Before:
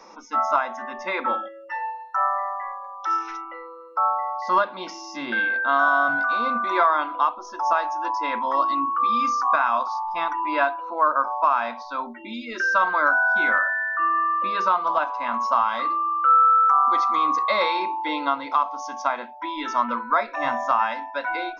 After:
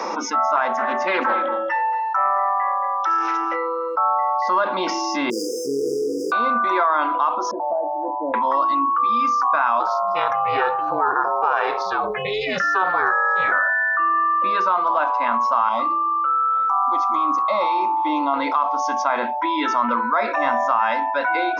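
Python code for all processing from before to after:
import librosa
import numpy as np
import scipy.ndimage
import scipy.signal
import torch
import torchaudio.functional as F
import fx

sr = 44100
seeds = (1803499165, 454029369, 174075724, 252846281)

y = fx.chain(x, sr, fx.echo_single(ms=227, db=-14.0),
    fx.doppler_dist(depth_ms=0.23), at=(0.56, 3.56))
y = fx.chain(y, sr, fx.lower_of_two(delay_ms=0.73),
    fx.brickwall_bandstop(low_hz=510.0, high_hz=4800.0),
    fx.low_shelf_res(hz=280.0, db=-13.5, q=1.5), at=(5.3, 6.32))
y = fx.chain(y, sr, fx.ellip_lowpass(hz=610.0, order=4, stop_db=80),
    fx.peak_eq(hz=210.0, db=-7.5, octaves=1.6),
    fx.comb(ms=1.2, depth=0.59), at=(7.51, 8.34))
y = fx.chain(y, sr, fx.high_shelf(hz=6000.0, db=5.5),
    fx.ring_mod(carrier_hz=190.0), at=(9.8, 13.52))
y = fx.chain(y, sr, fx.peak_eq(hz=4100.0, db=-8.0, octaves=0.5),
    fx.fixed_phaser(hz=450.0, stages=6),
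    fx.echo_single(ms=822, db=-20.5), at=(15.69, 18.34))
y = scipy.signal.sosfilt(scipy.signal.butter(2, 230.0, 'highpass', fs=sr, output='sos'), y)
y = fx.high_shelf(y, sr, hz=3100.0, db=-8.0)
y = fx.env_flatten(y, sr, amount_pct=70)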